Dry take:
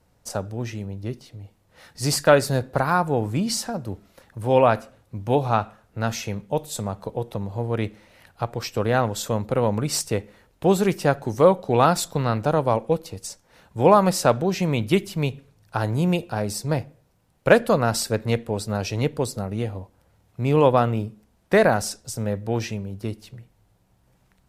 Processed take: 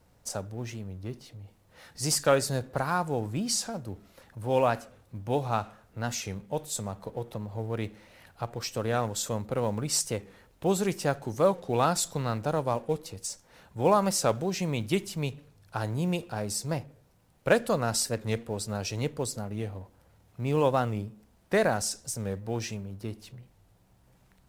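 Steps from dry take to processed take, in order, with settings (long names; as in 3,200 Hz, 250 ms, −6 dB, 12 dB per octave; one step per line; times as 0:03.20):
mu-law and A-law mismatch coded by mu
dynamic equaliser 7,400 Hz, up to +7 dB, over −45 dBFS, Q 0.83
wow of a warped record 45 rpm, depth 100 cents
level −8 dB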